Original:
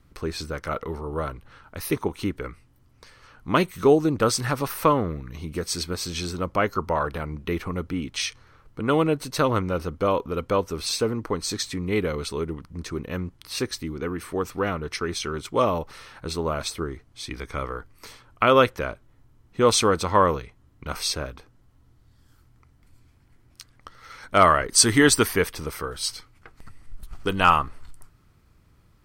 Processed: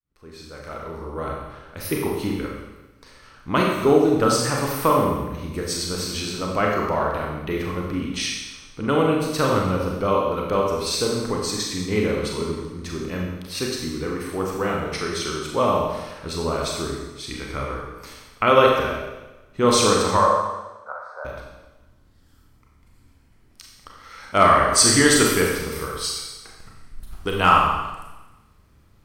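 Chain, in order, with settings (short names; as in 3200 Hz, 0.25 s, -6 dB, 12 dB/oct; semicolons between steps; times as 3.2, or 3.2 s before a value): opening faded in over 1.51 s; 20.17–21.25 elliptic band-pass 540–1500 Hz, stop band 40 dB; Schroeder reverb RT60 1.1 s, combs from 29 ms, DRR -1.5 dB; gain -1 dB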